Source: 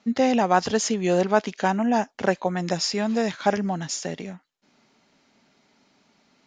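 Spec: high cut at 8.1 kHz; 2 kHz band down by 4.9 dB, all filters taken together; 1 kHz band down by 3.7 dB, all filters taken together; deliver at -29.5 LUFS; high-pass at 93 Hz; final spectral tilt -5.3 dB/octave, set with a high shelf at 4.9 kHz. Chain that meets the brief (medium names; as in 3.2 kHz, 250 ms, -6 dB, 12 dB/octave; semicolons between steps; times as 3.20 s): high-pass 93 Hz; low-pass 8.1 kHz; peaking EQ 1 kHz -4.5 dB; peaking EQ 2 kHz -4 dB; treble shelf 4.9 kHz -5 dB; trim -4 dB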